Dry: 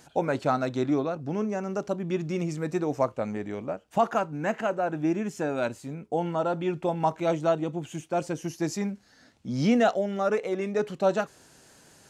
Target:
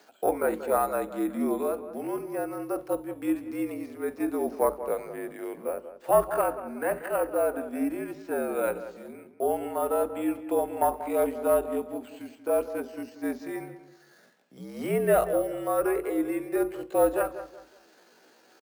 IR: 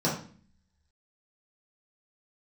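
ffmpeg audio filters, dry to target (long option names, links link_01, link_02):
-filter_complex "[0:a]highpass=frequency=350:width=0.5412,highpass=frequency=350:width=1.3066,acrossover=split=2900[link_01][link_02];[link_02]acompressor=threshold=-54dB:ratio=4:attack=1:release=60[link_03];[link_01][link_03]amix=inputs=2:normalize=0,lowpass=frequency=7800:width=0.5412,lowpass=frequency=7800:width=1.3066,highshelf=frequency=5700:gain=-9.5,acrusher=samples=4:mix=1:aa=0.000001,aeval=exprs='0.251*(cos(1*acos(clip(val(0)/0.251,-1,1)))-cos(1*PI/2))+0.0224*(cos(2*acos(clip(val(0)/0.251,-1,1)))-cos(2*PI/2))':channel_layout=same,atempo=0.65,afreqshift=-55,asplit=2[link_04][link_05];[link_05]adelay=185,lowpass=frequency=2300:poles=1,volume=-12dB,asplit=2[link_06][link_07];[link_07]adelay=185,lowpass=frequency=2300:poles=1,volume=0.34,asplit=2[link_08][link_09];[link_09]adelay=185,lowpass=frequency=2300:poles=1,volume=0.34[link_10];[link_04][link_06][link_08][link_10]amix=inputs=4:normalize=0,asplit=2[link_11][link_12];[1:a]atrim=start_sample=2205,atrim=end_sample=3528[link_13];[link_12][link_13]afir=irnorm=-1:irlink=0,volume=-24.5dB[link_14];[link_11][link_14]amix=inputs=2:normalize=0"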